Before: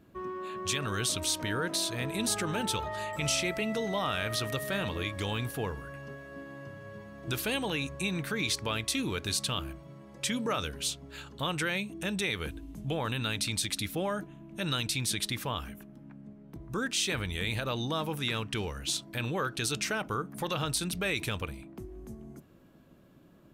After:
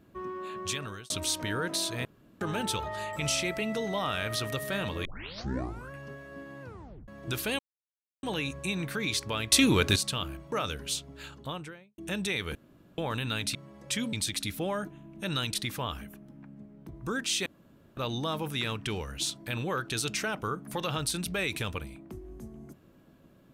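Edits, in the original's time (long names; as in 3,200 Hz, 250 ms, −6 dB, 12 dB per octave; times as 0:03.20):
0:00.45–0:01.10: fade out equal-power
0:02.05–0:02.41: fill with room tone
0:05.05: tape start 0.86 s
0:06.62: tape stop 0.46 s
0:07.59: splice in silence 0.64 s
0:08.88–0:09.32: clip gain +9.5 dB
0:09.88–0:10.46: move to 0:13.49
0:11.16–0:11.92: fade out and dull
0:12.49–0:12.92: fill with room tone
0:14.90–0:15.21: remove
0:17.13–0:17.64: fill with room tone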